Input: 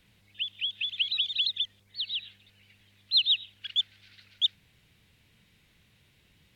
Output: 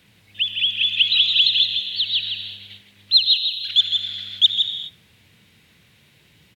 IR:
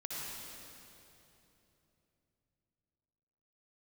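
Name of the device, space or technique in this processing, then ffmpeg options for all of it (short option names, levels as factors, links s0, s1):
keyed gated reverb: -filter_complex "[0:a]asettb=1/sr,asplit=3[s0][s1][s2];[s0]atrim=end=3.174[s3];[s1]atrim=start=3.17:end=3.68,asetpts=PTS-STARTPTS,afade=t=in:d=0.004:c=qsin,afade=t=out:st=0.506:d=0.004:c=qsin,aderivative[s4];[s2]atrim=start=3.676[s5];[s3][s4]acrossfade=d=0.004:c1=hsin:c2=qsin[s6];[s6][s5]acrossfade=d=0.004:c1=qsin:c2=hsin,highpass=89,aecho=1:1:160:0.501,asplit=3[s7][s8][s9];[1:a]atrim=start_sample=2205[s10];[s8][s10]afir=irnorm=-1:irlink=0[s11];[s9]apad=whole_len=295964[s12];[s11][s12]sidechaingate=range=0.0224:threshold=0.00126:ratio=16:detection=peak,volume=0.531[s13];[s7][s13]amix=inputs=2:normalize=0,volume=2.66"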